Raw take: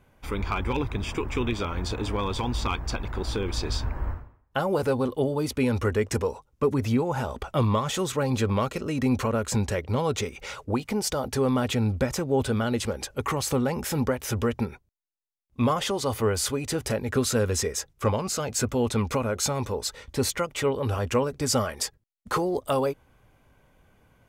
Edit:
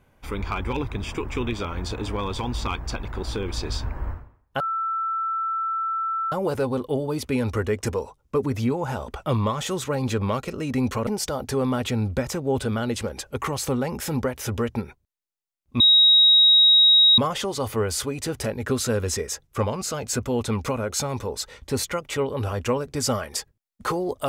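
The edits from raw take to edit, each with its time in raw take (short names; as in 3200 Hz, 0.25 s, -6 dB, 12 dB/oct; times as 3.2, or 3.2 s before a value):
4.6 add tone 1330 Hz -23 dBFS 1.72 s
9.35–10.91 cut
15.64 add tone 3800 Hz -11.5 dBFS 1.38 s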